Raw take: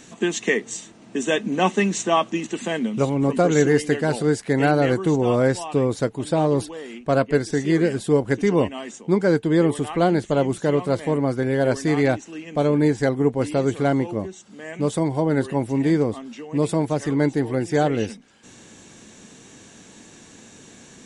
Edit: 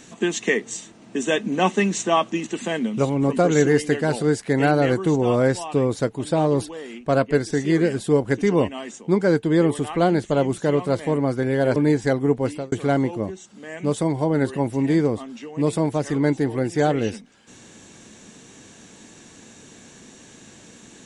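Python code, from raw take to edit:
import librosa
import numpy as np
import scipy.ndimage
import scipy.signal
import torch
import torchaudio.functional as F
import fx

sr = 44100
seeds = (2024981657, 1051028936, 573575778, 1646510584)

y = fx.edit(x, sr, fx.cut(start_s=11.76, length_s=0.96),
    fx.fade_out_span(start_s=13.39, length_s=0.29), tone=tone)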